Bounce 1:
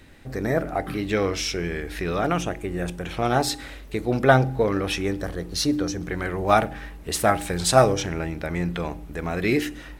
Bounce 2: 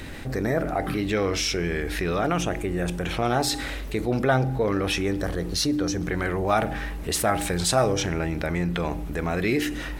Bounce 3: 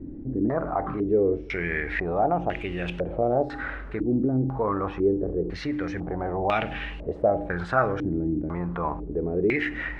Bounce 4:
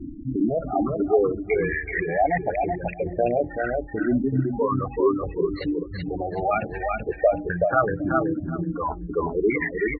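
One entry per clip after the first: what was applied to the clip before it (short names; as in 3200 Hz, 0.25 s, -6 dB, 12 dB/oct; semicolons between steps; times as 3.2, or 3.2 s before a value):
fast leveller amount 50%; gain -6.5 dB
requantised 8-bit, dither none; stepped low-pass 2 Hz 300–2800 Hz; gain -4.5 dB
spectral gate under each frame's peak -10 dB strong; feedback echo 0.378 s, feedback 29%, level -3 dB; reverb removal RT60 1.9 s; gain +3.5 dB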